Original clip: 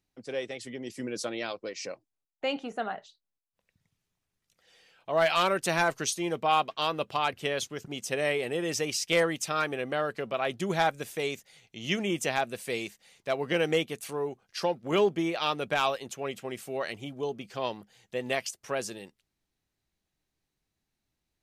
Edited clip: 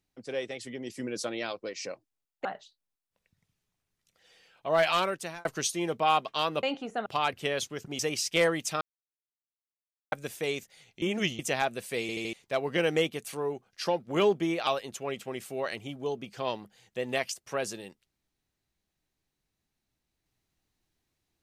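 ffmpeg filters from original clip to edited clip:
-filter_complex "[0:a]asplit=15[a][b][c][d][e][f][g][h][i][j][k][l][m][n][o];[a]atrim=end=2.452[p];[b]atrim=start=2.878:end=5.88,asetpts=PTS-STARTPTS,afade=t=out:st=2.442:d=0.56[q];[c]atrim=start=5.88:end=7.062,asetpts=PTS-STARTPTS,afade=t=in:d=0.004:c=hsin[r];[d]atrim=start=2.448:end=2.882[s];[e]atrim=start=7.058:end=7.992[t];[f]atrim=start=8.748:end=9.57,asetpts=PTS-STARTPTS,afade=t=out:st=0.818:d=0.004:c=hsin[u];[g]atrim=start=9.57:end=10.88,asetpts=PTS-STARTPTS,volume=0[v];[h]atrim=start=10.88:end=11.782,asetpts=PTS-STARTPTS,afade=t=in:d=0.004:c=hsin[w];[i]atrim=start=11.778:end=12.152,asetpts=PTS-STARTPTS,areverse[x];[j]atrim=start=12.148:end=12.852[y];[k]atrim=start=12.768:end=12.852[z];[l]atrim=start=12.768:end=12.852[aa];[m]atrim=start=12.768:end=12.852[ab];[n]atrim=start=13.088:end=15.432[ac];[o]atrim=start=15.838[ad];[q][r]concat=n=2:v=0:a=1[ae];[p][ae]acrossfade=d=0.004:c1=hsin:c2=hsin[af];[af][s]acrossfade=d=0.004:c1=hsin:c2=hsin[ag];[ag][t]acrossfade=d=0.004:c1=hsin:c2=hsin[ah];[u][v][w]concat=n=3:v=0:a=1[ai];[ah][ai]acrossfade=d=0.004:c1=hsin:c2=hsin[aj];[aj][x]acrossfade=d=0.004:c1=hsin:c2=hsin[ak];[ak][y]acrossfade=d=0.004:c1=hsin:c2=hsin[al];[al][z]acrossfade=d=0.004:c1=hsin:c2=hsin[am];[am][aa]acrossfade=d=0.004:c1=hsin:c2=hsin[an];[an][ab]acrossfade=d=0.004:c1=hsin:c2=hsin[ao];[ao][ac]acrossfade=d=0.004:c1=hsin:c2=hsin[ap];[ap][ad]acrossfade=d=0.004:c1=hsin:c2=hsin"

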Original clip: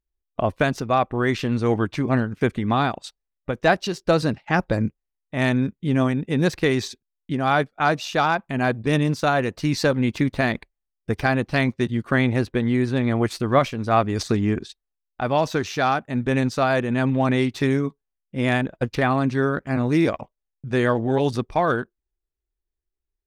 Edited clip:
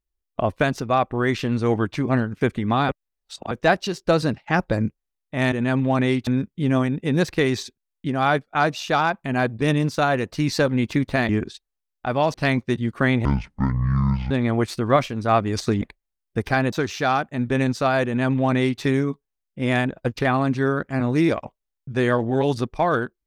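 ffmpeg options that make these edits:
-filter_complex "[0:a]asplit=11[a][b][c][d][e][f][g][h][i][j][k];[a]atrim=end=2.892[l];[b]atrim=start=2.888:end=3.512,asetpts=PTS-STARTPTS,areverse[m];[c]atrim=start=3.508:end=5.522[n];[d]atrim=start=16.818:end=17.572[o];[e]atrim=start=5.518:end=10.542[p];[f]atrim=start=14.438:end=15.492[q];[g]atrim=start=11.448:end=12.364[r];[h]atrim=start=12.36:end=12.93,asetpts=PTS-STARTPTS,asetrate=23814,aresample=44100[s];[i]atrim=start=12.926:end=14.442[t];[j]atrim=start=10.538:end=11.452[u];[k]atrim=start=15.488[v];[l][m]acrossfade=d=0.004:c1=hsin:c2=hsin[w];[w][n]acrossfade=d=0.004:c1=hsin:c2=hsin[x];[x][o]acrossfade=d=0.004:c1=hsin:c2=hsin[y];[y][p]acrossfade=d=0.004:c1=hsin:c2=hsin[z];[z][q]acrossfade=d=0.004:c1=hsin:c2=hsin[aa];[aa][r]acrossfade=d=0.004:c1=hsin:c2=hsin[ab];[ab][s]acrossfade=d=0.004:c1=hsin:c2=hsin[ac];[ac][t]acrossfade=d=0.004:c1=hsin:c2=hsin[ad];[ad][u]acrossfade=d=0.004:c1=hsin:c2=hsin[ae];[ae][v]acrossfade=d=0.004:c1=hsin:c2=hsin"

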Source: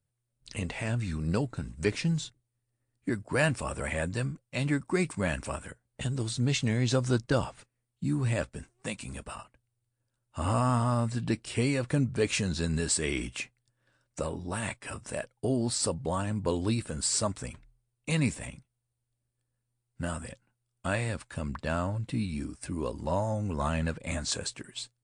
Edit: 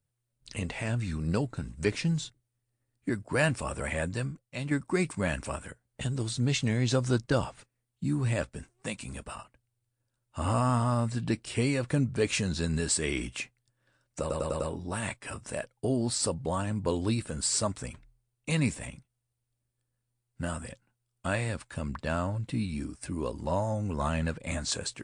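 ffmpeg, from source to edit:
-filter_complex "[0:a]asplit=6[a][b][c][d][e][f];[a]atrim=end=4.71,asetpts=PTS-STARTPTS,afade=t=out:st=4.04:d=0.67:silence=0.501187[g];[b]atrim=start=4.71:end=14.302,asetpts=PTS-STARTPTS,afade=t=in:d=0.004:c=hsin:silence=0.501187[h];[c]atrim=start=14.198:end=14.302[i];[d]atrim=start=14.198:end=14.302[j];[e]atrim=start=14.198:end=14.302[k];[f]atrim=start=14.198[l];[g][h]concat=n=2:v=0:a=1[m];[m][i]acrossfade=d=0.004:c1=hsin:c2=hsin[n];[n][j]acrossfade=d=0.004:c1=hsin:c2=hsin[o];[o][k]acrossfade=d=0.004:c1=hsin:c2=hsin[p];[p][l]acrossfade=d=0.004:c1=hsin:c2=hsin"

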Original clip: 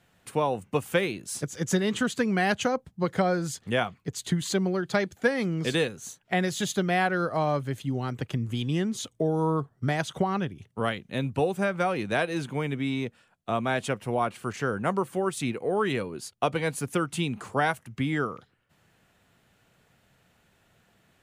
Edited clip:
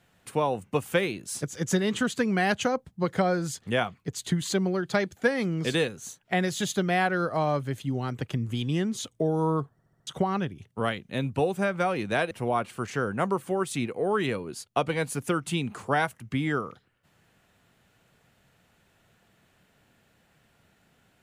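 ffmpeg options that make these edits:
-filter_complex "[0:a]asplit=7[a][b][c][d][e][f][g];[a]atrim=end=9.792[h];[b]atrim=start=9.718:end=9.792[i];[c]atrim=start=9.718:end=9.792[j];[d]atrim=start=9.718:end=9.792[k];[e]atrim=start=9.718:end=9.792[l];[f]atrim=start=10.068:end=12.312[m];[g]atrim=start=13.968[n];[h][i]acrossfade=d=0.004:c1=hsin:c2=hsin[o];[o][j]acrossfade=d=0.004:c1=hsin:c2=hsin[p];[p][k]acrossfade=d=0.004:c1=hsin:c2=hsin[q];[q][l]acrossfade=d=0.004:c1=hsin:c2=hsin[r];[r][m]acrossfade=d=0.004:c1=hsin:c2=hsin[s];[s][n]acrossfade=d=0.004:c1=hsin:c2=hsin"

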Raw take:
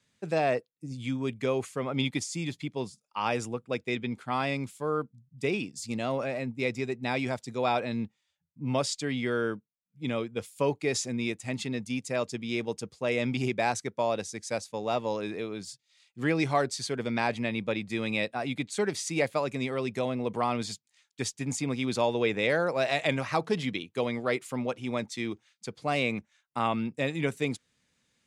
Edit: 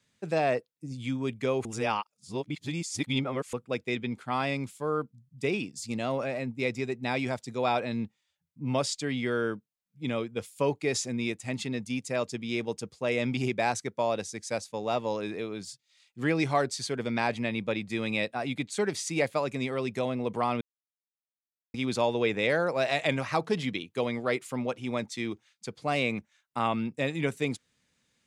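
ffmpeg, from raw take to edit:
-filter_complex "[0:a]asplit=5[a][b][c][d][e];[a]atrim=end=1.652[f];[b]atrim=start=1.648:end=3.532,asetpts=PTS-STARTPTS,areverse[g];[c]atrim=start=3.528:end=20.61,asetpts=PTS-STARTPTS,afade=t=out:st=17.078:d=0.004:c=hsin[h];[d]atrim=start=20.61:end=21.74,asetpts=PTS-STARTPTS,volume=0[i];[e]atrim=start=21.74,asetpts=PTS-STARTPTS,afade=t=in:d=0.004:c=hsin[j];[f][g]acrossfade=d=0.004:c1=hsin:c2=hsin[k];[h][i][j]concat=n=3:v=0:a=1[l];[k][l]acrossfade=d=0.004:c1=hsin:c2=hsin"

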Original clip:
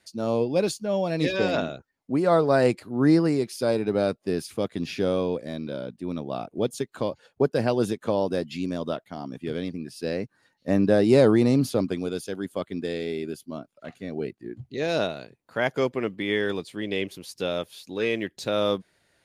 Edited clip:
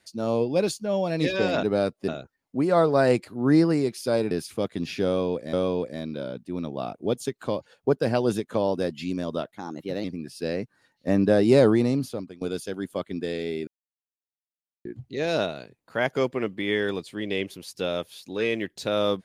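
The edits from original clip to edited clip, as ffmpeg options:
-filter_complex "[0:a]asplit=10[a][b][c][d][e][f][g][h][i][j];[a]atrim=end=1.632[k];[b]atrim=start=3.858:end=4.312[l];[c]atrim=start=1.628:end=3.862[m];[d]atrim=start=4.308:end=5.532[n];[e]atrim=start=5.058:end=9.114[o];[f]atrim=start=9.11:end=9.65,asetpts=PTS-STARTPTS,asetrate=51597,aresample=44100[p];[g]atrim=start=9.646:end=12.02,asetpts=PTS-STARTPTS,afade=t=out:st=1.604:d=0.77:silence=0.0891251[q];[h]atrim=start=12.02:end=13.28,asetpts=PTS-STARTPTS,afade=t=in:d=0.004:c=hsin:silence=0.0891251,afade=t=out:st=1.256:d=0.004:c=hsin[r];[i]atrim=start=13.28:end=14.46,asetpts=PTS-STARTPTS,volume=0[s];[j]atrim=start=14.46,asetpts=PTS-STARTPTS,afade=t=in:d=0.004:c=hsin[t];[k][l]acrossfade=d=0.004:c1=hsin:c2=hsin[u];[u][m]acrossfade=d=0.004:c1=hsin:c2=hsin[v];[v][n]acrossfade=d=0.004:c1=hsin:c2=hsin[w];[w][o]acrossfade=d=0.004:c1=hsin:c2=hsin[x];[x][p]acrossfade=d=0.004:c1=hsin:c2=hsin[y];[q][r][s][t]concat=n=4:v=0:a=1[z];[y][z]acrossfade=d=0.004:c1=hsin:c2=hsin"

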